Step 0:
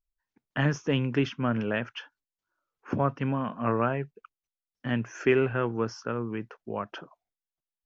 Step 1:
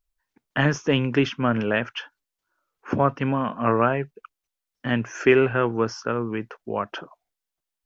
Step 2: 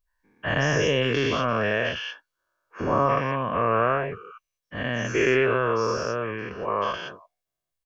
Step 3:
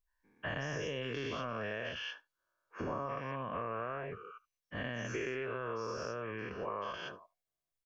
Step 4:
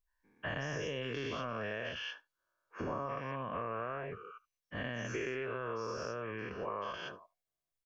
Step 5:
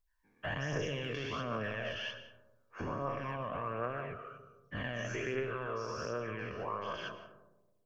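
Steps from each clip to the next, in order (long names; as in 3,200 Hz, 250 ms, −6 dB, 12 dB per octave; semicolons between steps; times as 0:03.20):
parametric band 140 Hz −4 dB 1.9 octaves; level +7 dB
every bin's largest magnitude spread in time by 240 ms; comb filter 1.8 ms, depth 42%; level −7.5 dB
downward compressor, threshold −29 dBFS, peak gain reduction 12 dB; single-tap delay 74 ms −23 dB; level −6.5 dB
no processing that can be heard
phase shifter 1.3 Hz, delay 1.8 ms, feedback 41%; convolution reverb RT60 1.1 s, pre-delay 105 ms, DRR 11.5 dB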